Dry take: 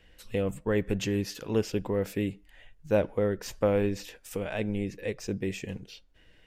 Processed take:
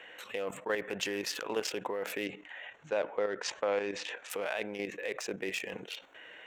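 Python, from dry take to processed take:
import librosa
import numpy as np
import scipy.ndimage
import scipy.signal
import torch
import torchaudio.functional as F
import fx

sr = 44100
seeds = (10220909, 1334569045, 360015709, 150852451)

y = fx.wiener(x, sr, points=9)
y = scipy.signal.sosfilt(scipy.signal.butter(2, 670.0, 'highpass', fs=sr, output='sos'), y)
y = fx.level_steps(y, sr, step_db=11)
y = fx.lowpass(y, sr, hz=7100.0, slope=24, at=(2.26, 4.3))
y = fx.env_flatten(y, sr, amount_pct=50)
y = y * librosa.db_to_amplitude(3.5)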